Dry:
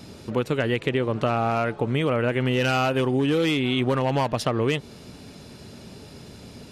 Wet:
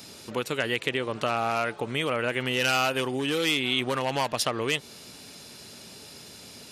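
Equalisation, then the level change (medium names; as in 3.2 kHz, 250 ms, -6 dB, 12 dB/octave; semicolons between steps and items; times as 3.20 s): tilt EQ +3 dB/octave; -2.0 dB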